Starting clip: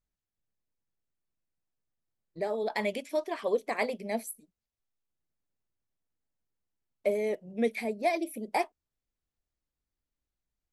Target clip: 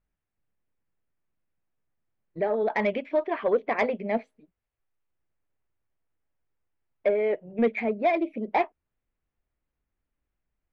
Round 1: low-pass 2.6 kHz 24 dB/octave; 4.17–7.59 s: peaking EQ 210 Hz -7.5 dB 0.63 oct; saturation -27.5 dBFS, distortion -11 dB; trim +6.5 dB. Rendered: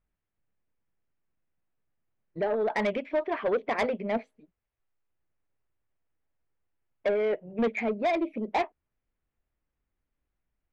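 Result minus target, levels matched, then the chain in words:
saturation: distortion +8 dB
low-pass 2.6 kHz 24 dB/octave; 4.17–7.59 s: peaking EQ 210 Hz -7.5 dB 0.63 oct; saturation -20.5 dBFS, distortion -19 dB; trim +6.5 dB

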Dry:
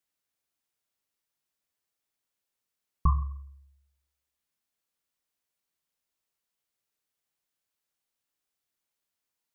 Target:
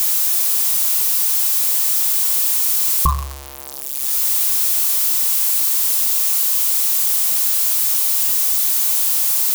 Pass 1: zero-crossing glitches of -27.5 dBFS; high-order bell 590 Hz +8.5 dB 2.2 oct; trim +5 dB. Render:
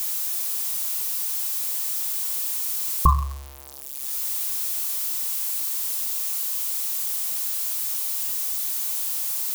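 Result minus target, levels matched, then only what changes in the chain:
zero-crossing glitches: distortion -10 dB
change: zero-crossing glitches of -17.5 dBFS

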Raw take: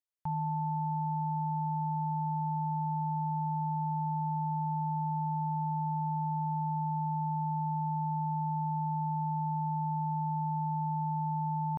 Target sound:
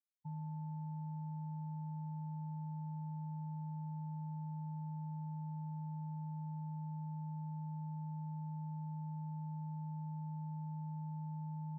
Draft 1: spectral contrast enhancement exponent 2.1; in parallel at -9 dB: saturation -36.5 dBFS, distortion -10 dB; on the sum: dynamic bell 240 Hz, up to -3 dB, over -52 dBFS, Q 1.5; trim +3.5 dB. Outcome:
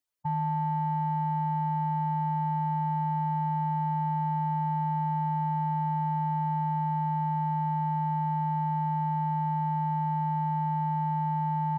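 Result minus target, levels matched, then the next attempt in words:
250 Hz band -4.0 dB
spectral contrast enhancement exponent 2.1; in parallel at -9 dB: saturation -36.5 dBFS, distortion -10 dB; on the sum: dynamic bell 240 Hz, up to -3 dB, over -52 dBFS, Q 1.5; ladder band-pass 230 Hz, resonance 20%; trim +3.5 dB

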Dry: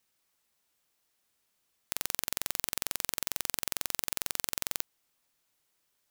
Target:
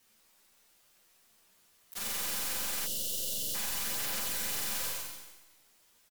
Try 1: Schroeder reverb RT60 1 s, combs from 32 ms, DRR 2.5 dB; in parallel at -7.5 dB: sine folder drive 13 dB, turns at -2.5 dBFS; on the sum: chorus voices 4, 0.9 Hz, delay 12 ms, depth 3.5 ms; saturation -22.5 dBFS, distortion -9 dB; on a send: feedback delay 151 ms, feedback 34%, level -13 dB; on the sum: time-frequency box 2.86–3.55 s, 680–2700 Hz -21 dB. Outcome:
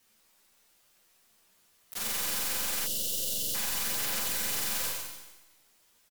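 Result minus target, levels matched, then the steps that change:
saturation: distortion -4 dB
change: saturation -29.5 dBFS, distortion -5 dB

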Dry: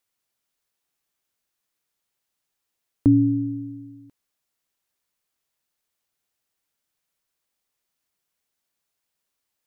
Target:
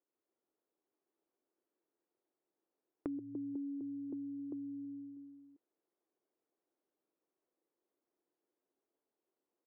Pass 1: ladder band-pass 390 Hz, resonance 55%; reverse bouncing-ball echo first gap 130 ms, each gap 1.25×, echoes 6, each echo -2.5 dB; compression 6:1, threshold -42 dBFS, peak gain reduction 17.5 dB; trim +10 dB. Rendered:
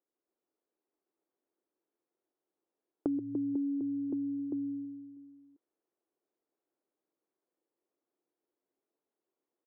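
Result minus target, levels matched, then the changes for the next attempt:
compression: peak gain reduction -8.5 dB
change: compression 6:1, threshold -52 dBFS, peak gain reduction 26 dB

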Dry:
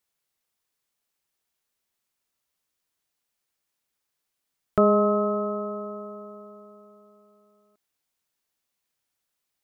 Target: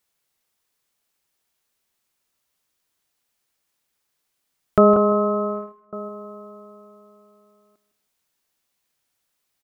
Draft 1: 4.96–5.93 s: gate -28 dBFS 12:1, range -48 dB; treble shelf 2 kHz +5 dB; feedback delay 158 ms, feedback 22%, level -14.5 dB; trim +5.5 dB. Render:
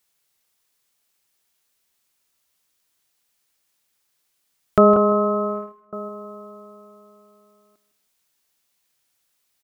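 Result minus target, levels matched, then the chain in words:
4 kHz band +4.5 dB
4.96–5.93 s: gate -28 dBFS 12:1, range -48 dB; feedback delay 158 ms, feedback 22%, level -14.5 dB; trim +5.5 dB

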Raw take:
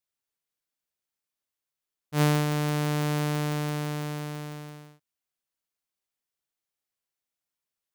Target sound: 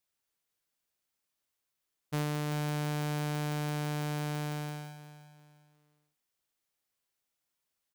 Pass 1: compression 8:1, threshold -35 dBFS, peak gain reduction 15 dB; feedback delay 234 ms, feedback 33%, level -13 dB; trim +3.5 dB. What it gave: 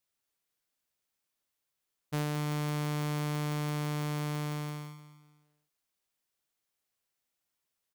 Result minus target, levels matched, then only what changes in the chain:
echo 154 ms early
change: feedback delay 388 ms, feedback 33%, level -13 dB

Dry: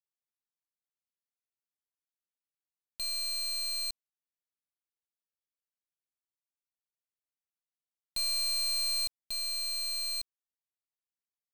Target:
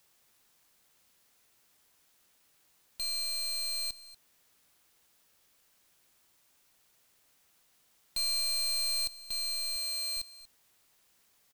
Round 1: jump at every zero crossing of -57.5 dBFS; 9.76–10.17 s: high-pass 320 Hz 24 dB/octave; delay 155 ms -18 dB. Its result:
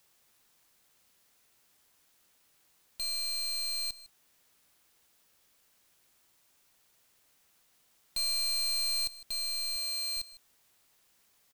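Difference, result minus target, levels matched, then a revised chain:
echo 83 ms early
jump at every zero crossing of -57.5 dBFS; 9.76–10.17 s: high-pass 320 Hz 24 dB/octave; delay 238 ms -18 dB

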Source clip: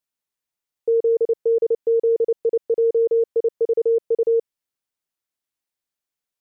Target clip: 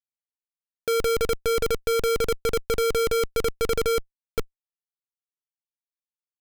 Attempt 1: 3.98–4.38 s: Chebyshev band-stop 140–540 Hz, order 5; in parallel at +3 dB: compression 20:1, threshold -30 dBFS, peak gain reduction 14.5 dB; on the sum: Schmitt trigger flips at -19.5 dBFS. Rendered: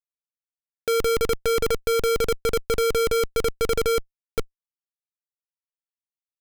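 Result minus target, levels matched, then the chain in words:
compression: peak gain reduction -8.5 dB
3.98–4.38 s: Chebyshev band-stop 140–540 Hz, order 5; in parallel at +3 dB: compression 20:1, threshold -39 dBFS, peak gain reduction 23 dB; on the sum: Schmitt trigger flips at -19.5 dBFS

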